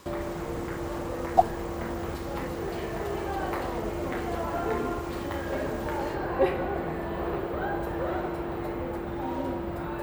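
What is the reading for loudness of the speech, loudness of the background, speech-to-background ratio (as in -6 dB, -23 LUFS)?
-27.0 LUFS, -32.0 LUFS, 5.0 dB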